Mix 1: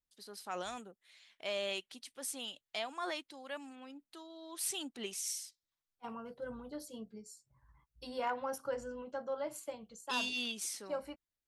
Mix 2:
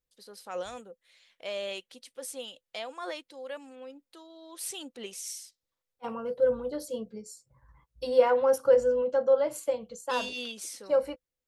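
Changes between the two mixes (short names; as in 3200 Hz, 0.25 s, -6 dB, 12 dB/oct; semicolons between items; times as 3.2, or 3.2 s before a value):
second voice +7.0 dB; master: add bell 510 Hz +15 dB 0.21 oct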